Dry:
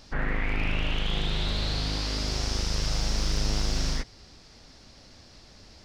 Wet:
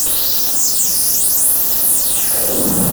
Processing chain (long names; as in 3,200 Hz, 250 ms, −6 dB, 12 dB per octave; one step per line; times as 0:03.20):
time-frequency cells dropped at random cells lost 31%
high-pass filter sweep 2,600 Hz → 81 Hz, 0:03.75–0:05.50
fuzz pedal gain 55 dB, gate −59 dBFS
comb filter 7.4 ms, depth 38%
on a send: loudspeakers that aren't time-aligned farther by 45 metres −10 dB, 64 metres −6 dB, 77 metres −12 dB
on the sum: all-pass phaser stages 8, 0.37 Hz, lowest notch 510–4,600 Hz
in parallel at −11 dB: sine wavefolder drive 20 dB, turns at −3.5 dBFS
on the sum: high-shelf EQ 6,700 Hz +10.5 dB
notch filter 1,100 Hz, Q 5.3
wrong playback speed 7.5 ips tape played at 15 ips
parametric band 2,300 Hz −10.5 dB 2.4 octaves
level −1 dB